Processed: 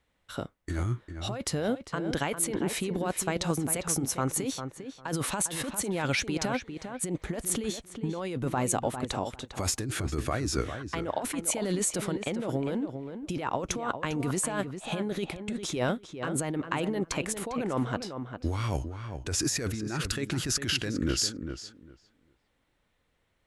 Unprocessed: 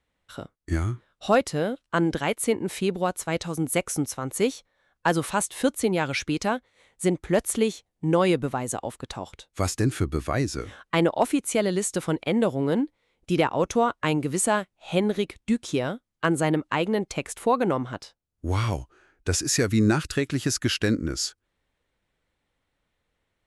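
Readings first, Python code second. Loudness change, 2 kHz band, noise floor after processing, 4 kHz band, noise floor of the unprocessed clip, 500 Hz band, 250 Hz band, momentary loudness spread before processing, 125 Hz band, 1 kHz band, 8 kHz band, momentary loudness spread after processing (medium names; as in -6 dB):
-5.5 dB, -5.5 dB, -73 dBFS, -2.0 dB, -78 dBFS, -8.0 dB, -6.0 dB, 9 LU, -4.5 dB, -6.5 dB, 0.0 dB, 7 LU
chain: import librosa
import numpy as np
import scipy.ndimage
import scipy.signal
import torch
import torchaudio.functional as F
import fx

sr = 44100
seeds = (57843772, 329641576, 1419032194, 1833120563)

y = fx.over_compress(x, sr, threshold_db=-28.0, ratio=-1.0)
y = fx.echo_filtered(y, sr, ms=401, feedback_pct=17, hz=2600.0, wet_db=-8.0)
y = y * librosa.db_to_amplitude(-2.0)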